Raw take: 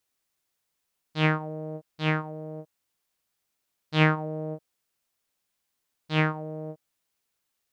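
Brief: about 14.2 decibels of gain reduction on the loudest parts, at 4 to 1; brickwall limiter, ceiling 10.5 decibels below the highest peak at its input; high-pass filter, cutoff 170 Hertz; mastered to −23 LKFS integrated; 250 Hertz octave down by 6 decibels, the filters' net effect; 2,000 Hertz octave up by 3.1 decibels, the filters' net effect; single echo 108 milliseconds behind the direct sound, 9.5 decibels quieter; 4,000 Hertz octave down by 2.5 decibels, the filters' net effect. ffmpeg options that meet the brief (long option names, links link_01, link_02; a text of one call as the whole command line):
ffmpeg -i in.wav -af "highpass=170,equalizer=frequency=250:width_type=o:gain=-7.5,equalizer=frequency=2000:width_type=o:gain=5.5,equalizer=frequency=4000:width_type=o:gain=-7,acompressor=threshold=-32dB:ratio=4,alimiter=level_in=3.5dB:limit=-24dB:level=0:latency=1,volume=-3.5dB,aecho=1:1:108:0.335,volume=19.5dB" out.wav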